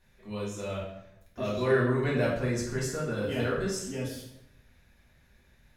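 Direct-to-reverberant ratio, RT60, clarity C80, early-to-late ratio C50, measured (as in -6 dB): -6.5 dB, 0.85 s, 6.5 dB, 2.5 dB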